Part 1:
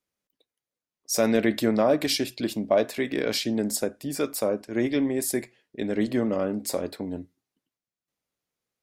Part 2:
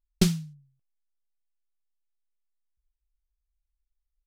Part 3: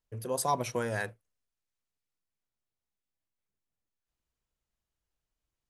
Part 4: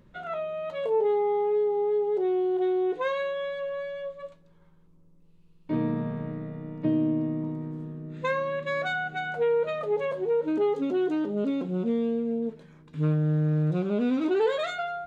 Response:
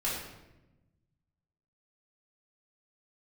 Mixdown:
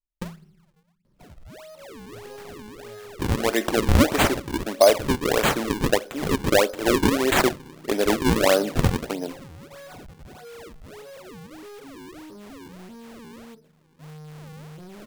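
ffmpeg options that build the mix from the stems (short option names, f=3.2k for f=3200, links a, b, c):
-filter_complex "[0:a]highpass=430,dynaudnorm=f=170:g=17:m=13dB,adelay=2100,volume=-2dB,asplit=2[a][b];[b]volume=-23dB[c];[1:a]volume=-13.5dB,asplit=2[d][e];[e]volume=-19.5dB[f];[2:a]alimiter=level_in=4dB:limit=-24dB:level=0:latency=1,volume=-4dB,adelay=2000,volume=-9dB[g];[3:a]highshelf=f=3.3k:g=-11,asoftclip=type=hard:threshold=-32dB,adelay=1050,volume=-8.5dB[h];[4:a]atrim=start_sample=2205[i];[c][f]amix=inputs=2:normalize=0[j];[j][i]afir=irnorm=-1:irlink=0[k];[a][d][g][h][k]amix=inputs=5:normalize=0,acrusher=samples=39:mix=1:aa=0.000001:lfo=1:lforange=62.4:lforate=1.6"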